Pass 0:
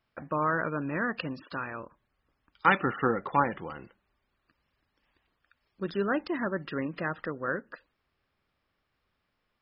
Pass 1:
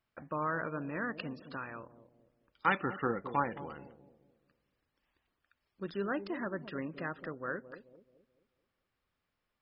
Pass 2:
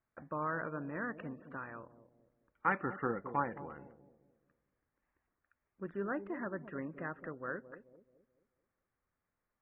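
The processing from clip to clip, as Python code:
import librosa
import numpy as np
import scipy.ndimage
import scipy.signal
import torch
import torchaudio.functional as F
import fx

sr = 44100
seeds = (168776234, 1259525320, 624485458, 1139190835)

y1 = fx.echo_bbd(x, sr, ms=216, stages=1024, feedback_pct=40, wet_db=-11.5)
y1 = F.gain(torch.from_numpy(y1), -6.5).numpy()
y2 = scipy.signal.sosfilt(scipy.signal.butter(6, 2100.0, 'lowpass', fs=sr, output='sos'), y1)
y2 = F.gain(torch.from_numpy(y2), -2.5).numpy()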